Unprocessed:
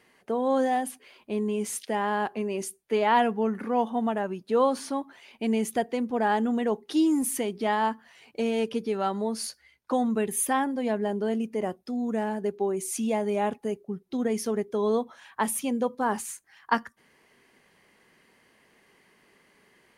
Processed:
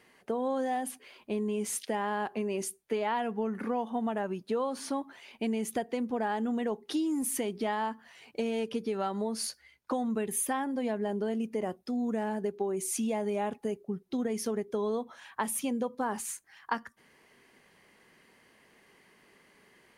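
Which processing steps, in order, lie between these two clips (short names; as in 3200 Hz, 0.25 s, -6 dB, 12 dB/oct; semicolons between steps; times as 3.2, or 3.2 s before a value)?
compressor, threshold -28 dBFS, peak gain reduction 11 dB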